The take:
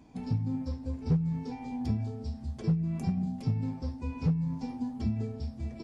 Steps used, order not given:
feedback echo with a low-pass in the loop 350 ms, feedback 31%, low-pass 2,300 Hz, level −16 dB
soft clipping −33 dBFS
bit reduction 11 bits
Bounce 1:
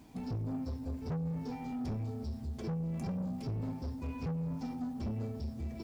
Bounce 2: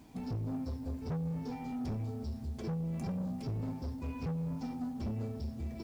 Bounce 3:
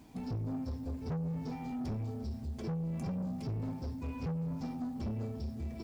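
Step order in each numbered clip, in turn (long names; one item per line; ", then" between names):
bit reduction, then soft clipping, then feedback echo with a low-pass in the loop
soft clipping, then feedback echo with a low-pass in the loop, then bit reduction
feedback echo with a low-pass in the loop, then bit reduction, then soft clipping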